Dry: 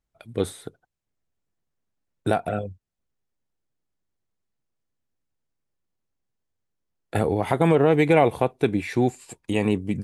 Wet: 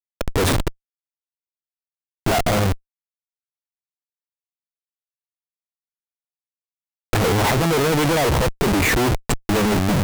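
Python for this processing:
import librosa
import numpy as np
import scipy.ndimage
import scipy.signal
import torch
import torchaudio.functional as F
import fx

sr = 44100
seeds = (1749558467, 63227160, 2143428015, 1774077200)

y = fx.leveller(x, sr, passes=3)
y = fx.schmitt(y, sr, flips_db=-27.5)
y = y * librosa.db_to_amplitude(1.5)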